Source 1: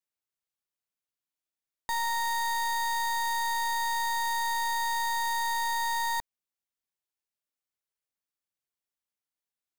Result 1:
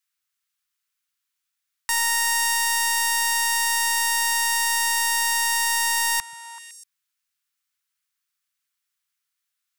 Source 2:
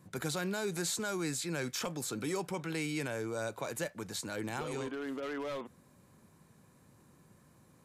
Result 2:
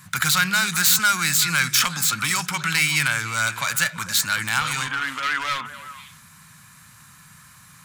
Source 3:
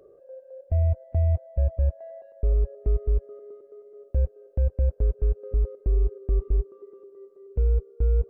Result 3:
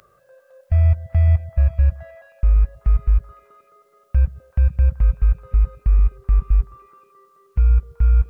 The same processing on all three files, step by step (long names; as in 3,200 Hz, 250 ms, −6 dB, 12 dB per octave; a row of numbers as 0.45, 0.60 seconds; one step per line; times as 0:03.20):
phase distortion by the signal itself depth 0.052 ms
drawn EQ curve 170 Hz 0 dB, 410 Hz −22 dB, 1,300 Hz +12 dB
echo through a band-pass that steps 127 ms, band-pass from 160 Hz, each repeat 1.4 octaves, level −5.5 dB
loudness normalisation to −20 LKFS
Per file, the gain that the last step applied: −0.5, +9.5, +7.0 decibels